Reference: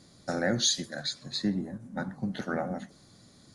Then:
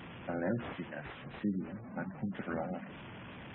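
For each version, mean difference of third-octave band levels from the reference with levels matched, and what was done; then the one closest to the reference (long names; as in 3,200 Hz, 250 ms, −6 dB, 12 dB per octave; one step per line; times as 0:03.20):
11.0 dB: linear delta modulator 16 kbit/s, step −36 dBFS
high-pass filter 41 Hz
gate on every frequency bin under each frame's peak −25 dB strong
level −5 dB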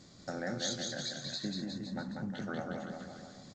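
8.5 dB: downward compressor 2 to 1, threshold −43 dBFS, peak gain reduction 12 dB
on a send: bouncing-ball delay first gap 190 ms, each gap 0.9×, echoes 5
on the sum: G.722 64 kbit/s 16,000 Hz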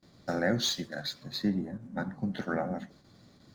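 2.5 dB: running median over 5 samples
noise gate with hold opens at −48 dBFS
high-shelf EQ 8,200 Hz −9.5 dB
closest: third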